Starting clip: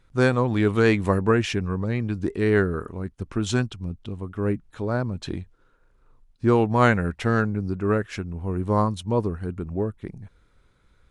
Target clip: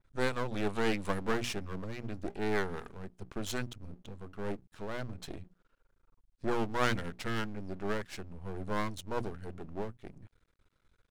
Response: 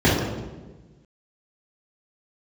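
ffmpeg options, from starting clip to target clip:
-af "bandreject=f=60:t=h:w=6,bandreject=f=120:t=h:w=6,bandreject=f=180:t=h:w=6,bandreject=f=240:t=h:w=6,aeval=exprs='max(val(0),0)':c=same,adynamicequalizer=threshold=0.00891:dfrequency=2400:dqfactor=0.7:tfrequency=2400:tqfactor=0.7:attack=5:release=100:ratio=0.375:range=2.5:mode=boostabove:tftype=highshelf,volume=0.447"

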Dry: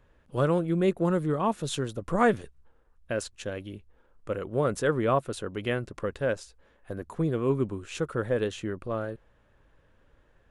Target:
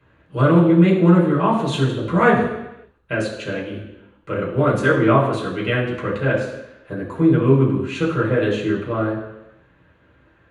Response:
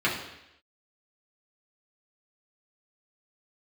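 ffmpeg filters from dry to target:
-filter_complex "[1:a]atrim=start_sample=2205,asetrate=40572,aresample=44100[s0];[0:a][s0]afir=irnorm=-1:irlink=0,volume=0.668"

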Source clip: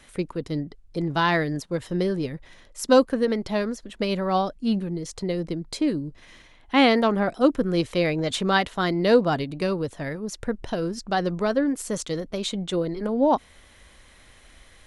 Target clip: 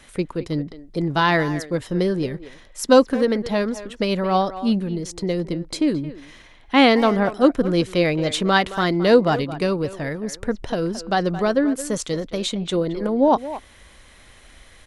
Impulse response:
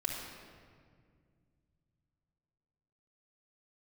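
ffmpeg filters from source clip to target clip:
-filter_complex "[0:a]asplit=2[s0][s1];[s1]adelay=220,highpass=300,lowpass=3400,asoftclip=type=hard:threshold=0.188,volume=0.224[s2];[s0][s2]amix=inputs=2:normalize=0,volume=1.5"

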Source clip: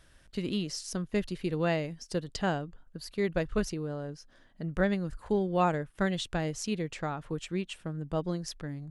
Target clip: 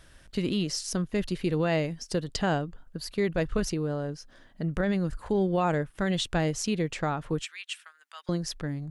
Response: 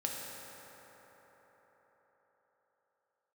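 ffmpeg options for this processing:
-filter_complex "[0:a]alimiter=limit=0.0708:level=0:latency=1:release=29,asettb=1/sr,asplit=3[s0][s1][s2];[s0]atrim=end=7.434[s3];[s1]atrim=start=7.43:end=8.29,asetpts=PTS-STARTPTS,afade=t=in:d=0.004:c=qsin,afade=t=out:st=0.856:d=0.004:c=qsin,highpass=f=1400:w=0.5412,highpass=f=1400:w=1.3066[s4];[s2]atrim=start=8.286[s5];[s3][s4]acrossfade=d=0.004:c1=hsin:c2=qsin[s6];[s6][s5]acrossfade=d=0.004:c1=qsin:c2=hsin,volume=1.88"

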